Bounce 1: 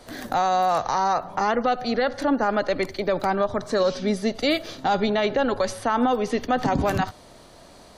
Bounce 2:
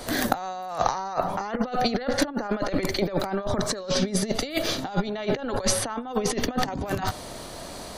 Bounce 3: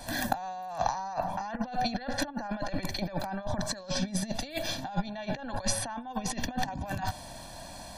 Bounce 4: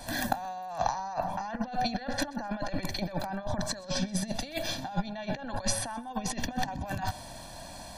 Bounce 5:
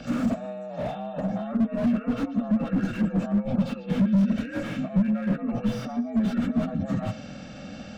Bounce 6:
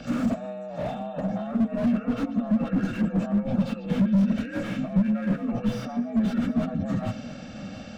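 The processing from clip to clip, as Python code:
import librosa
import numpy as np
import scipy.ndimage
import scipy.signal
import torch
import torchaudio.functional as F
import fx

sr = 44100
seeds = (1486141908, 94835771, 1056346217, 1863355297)

y1 = fx.over_compress(x, sr, threshold_db=-28.0, ratio=-0.5)
y1 = fx.high_shelf(y1, sr, hz=8500.0, db=7.5)
y1 = y1 * 10.0 ** (3.0 / 20.0)
y2 = y1 + 0.86 * np.pad(y1, (int(1.2 * sr / 1000.0), 0))[:len(y1)]
y2 = y2 * 10.0 ** (-8.5 / 20.0)
y3 = fx.echo_feedback(y2, sr, ms=128, feedback_pct=34, wet_db=-23.0)
y4 = fx.partial_stretch(y3, sr, pct=84)
y4 = fx.small_body(y4, sr, hz=(210.0, 1500.0), ring_ms=25, db=18)
y4 = fx.slew_limit(y4, sr, full_power_hz=31.0)
y4 = y4 * 10.0 ** (-1.0 / 20.0)
y5 = fx.echo_feedback(y4, sr, ms=687, feedback_pct=35, wet_db=-16.5)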